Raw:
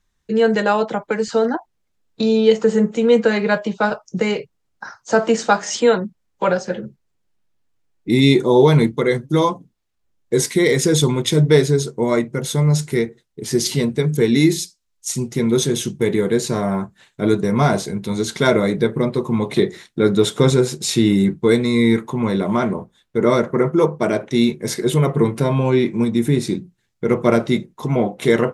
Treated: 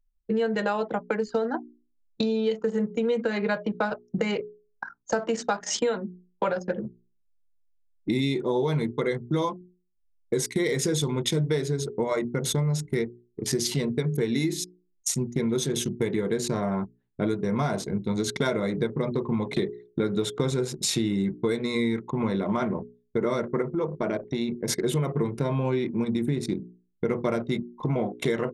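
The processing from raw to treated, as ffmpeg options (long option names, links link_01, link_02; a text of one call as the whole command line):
ffmpeg -i in.wav -filter_complex "[0:a]asettb=1/sr,asplit=3[link_01][link_02][link_03];[link_01]atrim=end=23.624[link_04];[link_02]atrim=start=23.62:end=24.7,asetpts=PTS-STARTPTS,afade=type=in:duration=0.004:curve=qsin,afade=type=out:start_time=1.076:duration=0.004:curve=qsin,acompressor=threshold=-23dB:ratio=2.5:attack=3.2:release=140:knee=1:detection=peak[link_05];[link_03]atrim=start=24.696[link_06];[link_04][link_05]acrossfade=duration=0.004:curve1=hsin:curve2=qsin[link_07];[link_07][link_06]acrossfade=duration=0.004:curve1=qsin:curve2=hsin,anlmdn=100,bandreject=frequency=60:width_type=h:width=6,bandreject=frequency=120:width_type=h:width=6,bandreject=frequency=180:width_type=h:width=6,bandreject=frequency=240:width_type=h:width=6,bandreject=frequency=300:width_type=h:width=6,bandreject=frequency=360:width_type=h:width=6,bandreject=frequency=420:width_type=h:width=6,acompressor=threshold=-23dB:ratio=6" out.wav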